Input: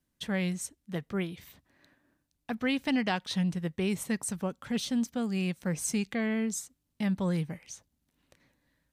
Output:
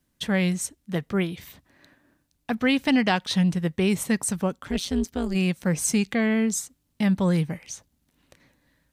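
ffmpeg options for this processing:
-filter_complex "[0:a]asplit=3[s0][s1][s2];[s0]afade=t=out:st=4.57:d=0.02[s3];[s1]tremolo=f=180:d=0.824,afade=t=in:st=4.57:d=0.02,afade=t=out:st=5.34:d=0.02[s4];[s2]afade=t=in:st=5.34:d=0.02[s5];[s3][s4][s5]amix=inputs=3:normalize=0,volume=2.37"

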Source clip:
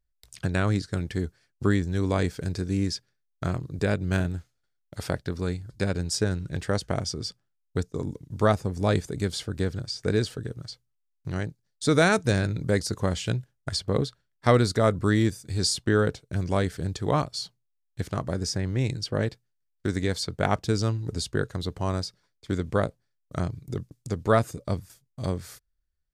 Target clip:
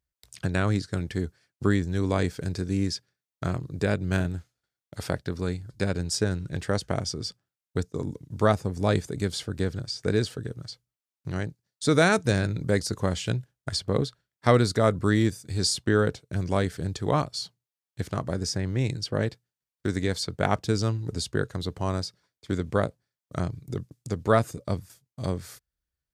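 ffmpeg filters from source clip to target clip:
-af "highpass=63"

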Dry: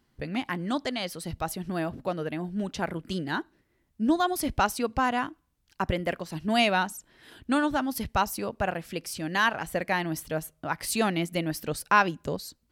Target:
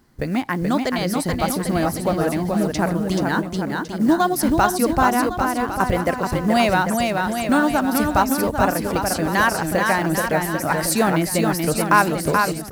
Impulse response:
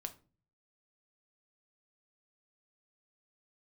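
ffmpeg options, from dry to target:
-filter_complex "[0:a]asplit=2[s0][s1];[s1]acompressor=threshold=0.02:ratio=6,volume=1.41[s2];[s0][s2]amix=inputs=2:normalize=0,acrusher=bits=7:mode=log:mix=0:aa=0.000001,equalizer=f=3000:t=o:w=0.83:g=-8,bandreject=f=60:t=h:w=6,bandreject=f=120:t=h:w=6,aecho=1:1:430|795.5|1106|1370|1595:0.631|0.398|0.251|0.158|0.1,volume=1.68"

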